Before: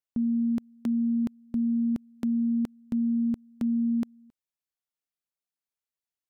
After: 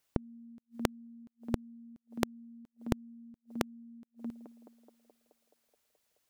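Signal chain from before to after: band-passed feedback delay 213 ms, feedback 77%, band-pass 580 Hz, level -22.5 dB; inverted gate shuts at -39 dBFS, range -41 dB; trim +15.5 dB

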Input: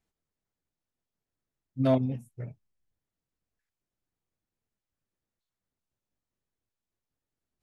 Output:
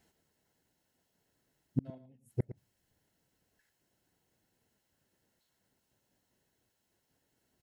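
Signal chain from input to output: inverted gate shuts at -30 dBFS, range -41 dB; comb of notches 1.2 kHz; on a send: delay 111 ms -14 dB; on the sum: trim +14 dB

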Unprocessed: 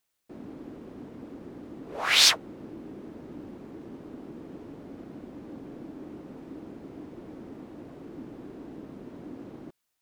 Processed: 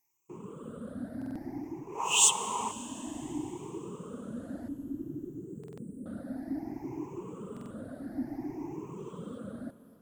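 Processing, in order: drifting ripple filter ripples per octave 0.73, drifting +0.58 Hz, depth 20 dB; 2.05–2.69 s: spectral replace 370–2500 Hz before; reverb removal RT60 0.71 s; 4.68–6.06 s: inverse Chebyshev band-stop 860–4000 Hz, stop band 50 dB; 8.98–9.39 s: time-frequency box 3.1–6.3 kHz +9 dB; ten-band graphic EQ 125 Hz +5 dB, 250 Hz +4 dB, 1 kHz +6 dB, 4 kHz -8 dB, 8 kHz +9 dB, 16 kHz +5 dB; level rider gain up to 5 dB; Schroeder reverb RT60 3.8 s, combs from 33 ms, DRR 13 dB; buffer glitch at 1.17/5.59/7.52 s, samples 2048, times 3; trim -8 dB

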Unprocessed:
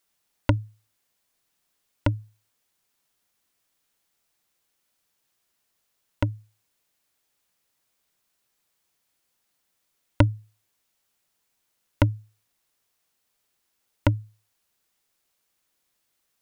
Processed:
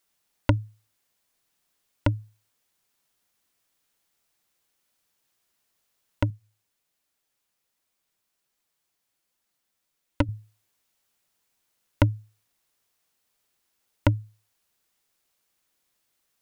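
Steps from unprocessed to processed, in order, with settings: 6.30–10.29 s: flange 1.3 Hz, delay 2.7 ms, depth 7.7 ms, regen -35%

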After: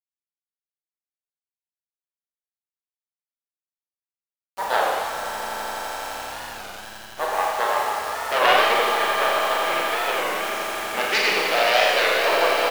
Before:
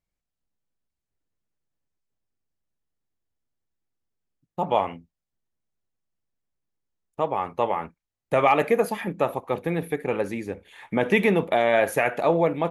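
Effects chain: self-modulated delay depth 0.2 ms; high-pass 910 Hz 12 dB/octave; in parallel at -3.5 dB: hard clipper -16 dBFS, distortion -18 dB; on the sum: harmony voices -4 st -8 dB, +4 st -15 dB; low-pass 5.5 kHz 12 dB/octave; on a send: echo with a slow build-up 84 ms, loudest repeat 8, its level -14.5 dB; on the sum: bit crusher 6-bit; Schroeder reverb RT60 1.7 s, combs from 29 ms, DRR -2.5 dB; warped record 33 1/3 rpm, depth 160 cents; trim -1.5 dB

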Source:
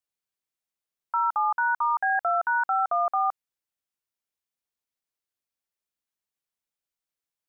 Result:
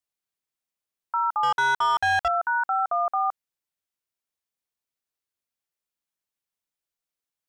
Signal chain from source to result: 1.43–2.28 s: waveshaping leveller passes 2

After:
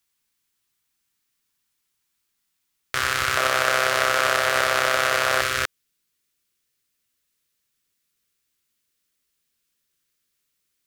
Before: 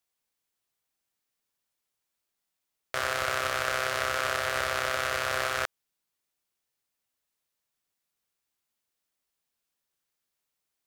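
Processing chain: peaking EQ 620 Hz -13.5 dB 0.94 oct, from 3.37 s 68 Hz, from 5.41 s 770 Hz; trim +8.5 dB

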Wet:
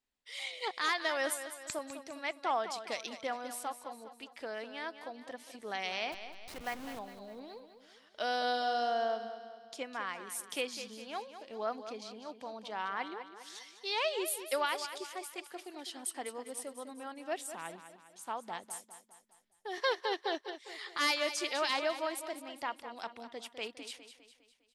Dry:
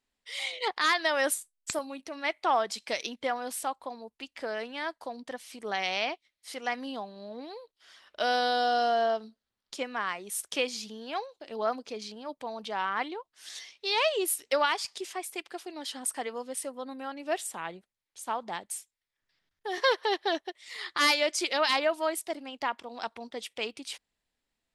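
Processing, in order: 6.12–6.99 s: send-on-delta sampling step -35.5 dBFS; on a send: feedback delay 203 ms, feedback 48%, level -11 dB; on the sum: trim -6.5 dB

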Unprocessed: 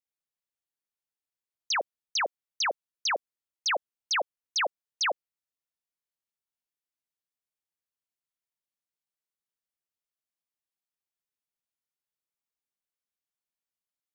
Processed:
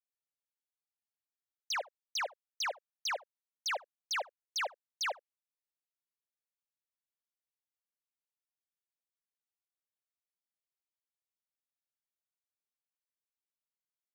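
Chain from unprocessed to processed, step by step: high-pass 480 Hz 24 dB/octave; waveshaping leveller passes 1; delay 73 ms -22 dB; trim -8 dB

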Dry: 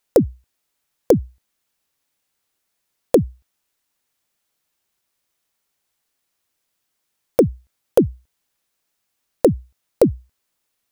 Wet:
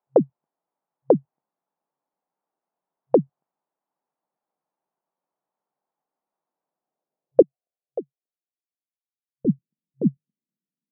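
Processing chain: FFT band-pass 130–8800 Hz; low-pass sweep 850 Hz -> 210 Hz, 6.65–9.34 s; 7.42–9.45 s: vowel filter a; trim -5 dB

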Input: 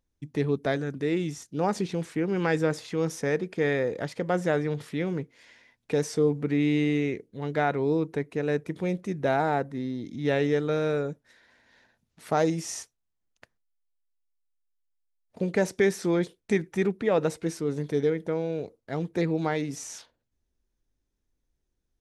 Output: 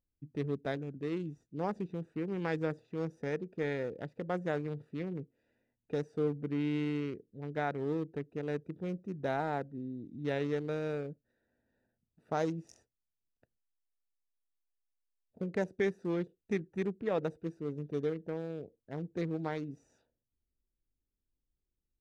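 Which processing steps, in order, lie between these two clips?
local Wiener filter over 41 samples; trim -8 dB

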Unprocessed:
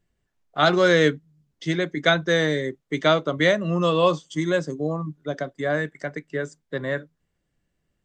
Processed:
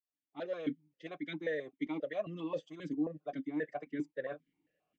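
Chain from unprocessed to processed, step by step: fade-in on the opening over 2.38 s; reverse; compression 12:1, threshold -34 dBFS, peak gain reduction 20.5 dB; reverse; comb 6.5 ms, depth 33%; time stretch by phase-locked vocoder 0.62×; stepped vowel filter 7.5 Hz; trim +10.5 dB

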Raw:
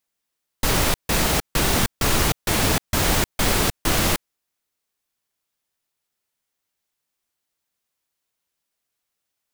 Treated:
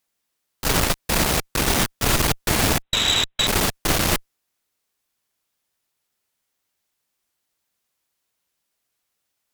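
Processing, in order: 2.82–3.47 s: frequency inversion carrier 3.9 kHz; one-sided clip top -30 dBFS; trim +3.5 dB

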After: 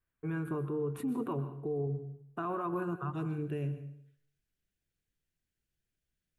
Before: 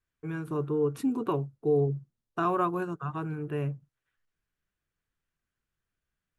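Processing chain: peaking EQ 5.3 kHz -14.5 dB 1 oct, from 3.13 s 1.1 kHz; peak limiter -28 dBFS, peak gain reduction 11.5 dB; plate-style reverb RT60 0.64 s, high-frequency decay 0.85×, pre-delay 110 ms, DRR 11 dB

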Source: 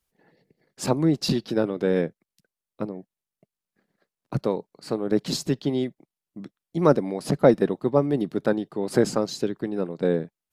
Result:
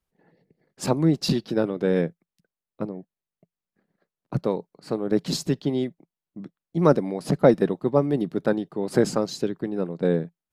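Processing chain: peaking EQ 170 Hz +4 dB 0.24 oct; tape noise reduction on one side only decoder only

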